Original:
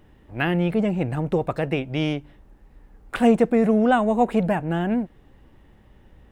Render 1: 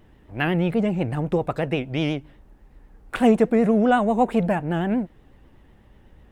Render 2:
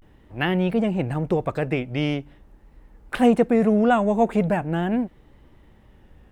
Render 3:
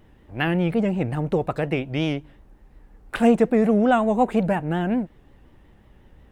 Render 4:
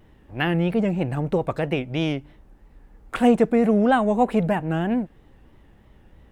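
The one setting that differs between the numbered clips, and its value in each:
vibrato, rate: 8.1, 0.42, 5.5, 3.1 Hz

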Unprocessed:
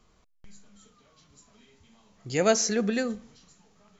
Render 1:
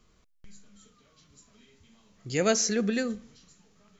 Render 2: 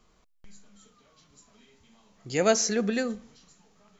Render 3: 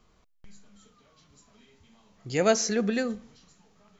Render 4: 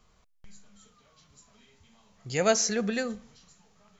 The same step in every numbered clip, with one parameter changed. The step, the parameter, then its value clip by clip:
bell, frequency: 810, 92, 10000, 310 Hz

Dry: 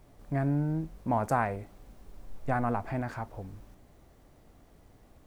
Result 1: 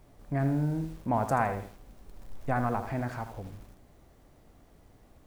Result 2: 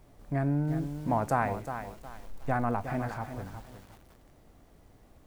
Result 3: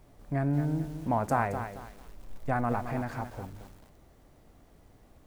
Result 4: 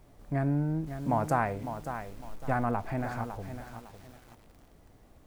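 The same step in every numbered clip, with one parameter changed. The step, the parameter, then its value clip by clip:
lo-fi delay, time: 81, 362, 221, 555 ms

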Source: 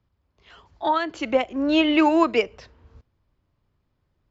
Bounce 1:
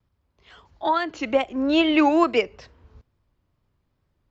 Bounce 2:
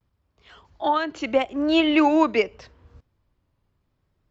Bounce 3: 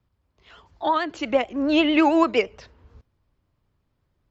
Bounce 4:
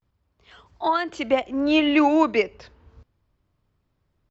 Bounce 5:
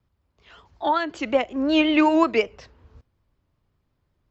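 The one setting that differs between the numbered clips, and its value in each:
vibrato, rate: 2.3, 0.78, 9, 0.33, 5.4 Hz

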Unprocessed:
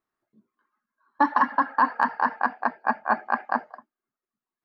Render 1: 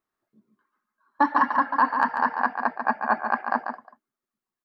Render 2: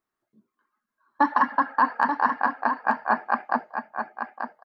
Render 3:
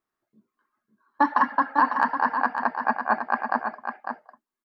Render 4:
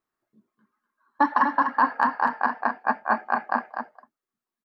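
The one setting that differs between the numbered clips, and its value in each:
echo, time: 0.142, 0.884, 0.551, 0.247 s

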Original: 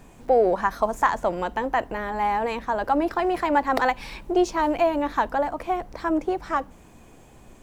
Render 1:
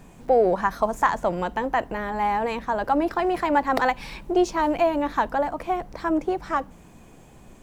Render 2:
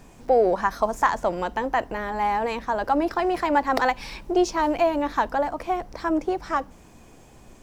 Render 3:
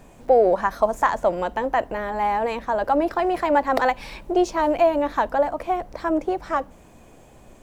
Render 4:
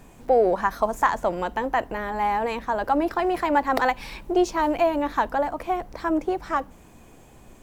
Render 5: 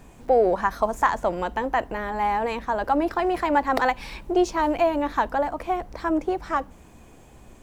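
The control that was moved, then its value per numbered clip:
bell, frequency: 170, 5300, 590, 15000, 61 Hz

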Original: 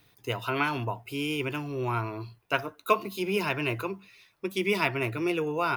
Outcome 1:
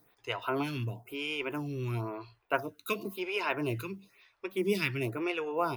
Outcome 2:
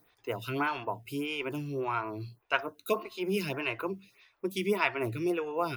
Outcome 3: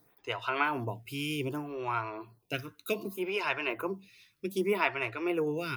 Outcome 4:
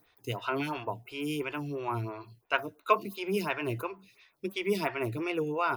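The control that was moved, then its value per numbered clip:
photocell phaser, rate: 0.98, 1.7, 0.65, 2.9 Hz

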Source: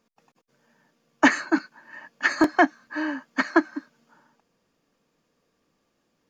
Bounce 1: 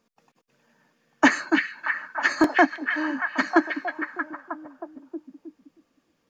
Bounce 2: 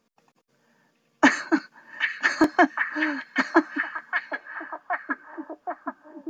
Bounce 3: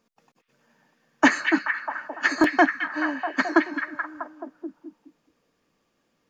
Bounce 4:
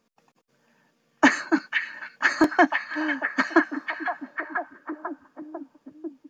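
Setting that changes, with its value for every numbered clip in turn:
delay with a stepping band-pass, time: 0.315, 0.771, 0.215, 0.496 s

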